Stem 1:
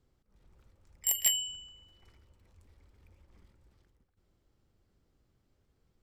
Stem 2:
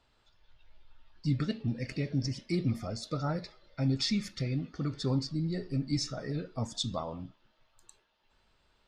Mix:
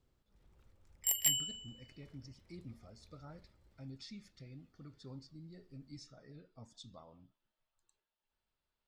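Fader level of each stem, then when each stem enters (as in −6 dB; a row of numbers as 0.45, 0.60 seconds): −3.5, −20.0 decibels; 0.00, 0.00 seconds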